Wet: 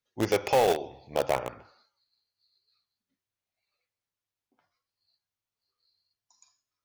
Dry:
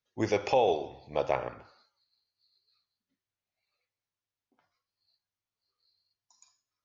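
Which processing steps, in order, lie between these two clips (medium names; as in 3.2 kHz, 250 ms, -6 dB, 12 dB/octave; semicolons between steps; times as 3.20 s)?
in parallel at -3 dB: bit crusher 4-bit; on the sum: saturation -14 dBFS, distortion -18 dB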